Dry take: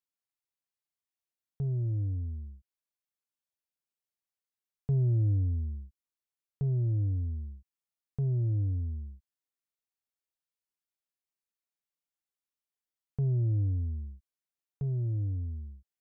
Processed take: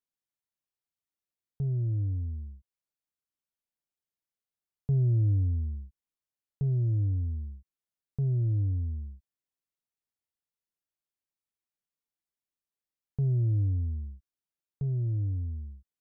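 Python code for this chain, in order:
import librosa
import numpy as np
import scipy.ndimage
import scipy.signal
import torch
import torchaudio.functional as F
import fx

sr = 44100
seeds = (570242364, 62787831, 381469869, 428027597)

y = fx.low_shelf(x, sr, hz=480.0, db=6.5)
y = F.gain(torch.from_numpy(y), -4.5).numpy()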